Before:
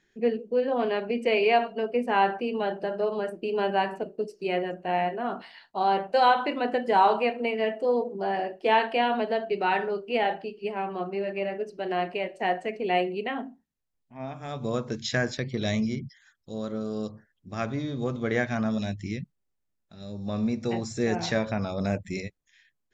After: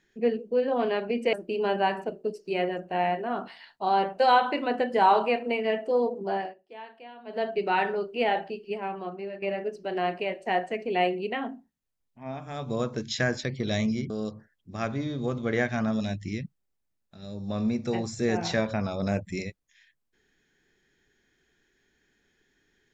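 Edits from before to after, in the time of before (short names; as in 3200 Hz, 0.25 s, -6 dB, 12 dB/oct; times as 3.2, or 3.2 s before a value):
1.33–3.27 cut
8.28–9.39 dip -21.5 dB, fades 0.20 s
10.52–11.36 fade out, to -8.5 dB
16.04–16.88 cut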